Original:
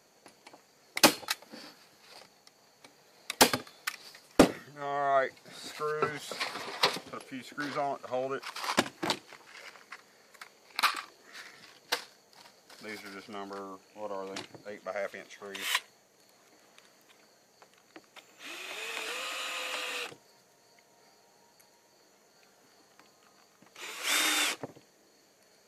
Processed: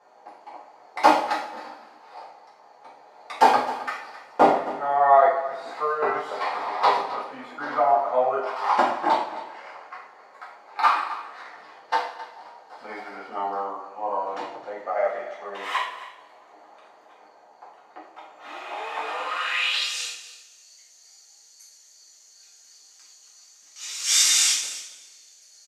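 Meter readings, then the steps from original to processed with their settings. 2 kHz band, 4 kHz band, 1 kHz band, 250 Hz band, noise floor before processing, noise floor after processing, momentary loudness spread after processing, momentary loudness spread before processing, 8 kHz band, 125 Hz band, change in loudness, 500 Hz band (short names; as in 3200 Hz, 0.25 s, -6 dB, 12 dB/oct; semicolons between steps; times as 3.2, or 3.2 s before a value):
+4.0 dB, +4.5 dB, +13.5 dB, -0.5 dB, -64 dBFS, -54 dBFS, 21 LU, 22 LU, +9.5 dB, n/a, +8.5 dB, +8.5 dB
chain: hard clip -17.5 dBFS, distortion -11 dB; two-slope reverb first 0.52 s, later 1.7 s, DRR -7.5 dB; band-pass sweep 840 Hz -> 6200 Hz, 19.26–19.95; echo 0.264 s -15.5 dB; gain +9 dB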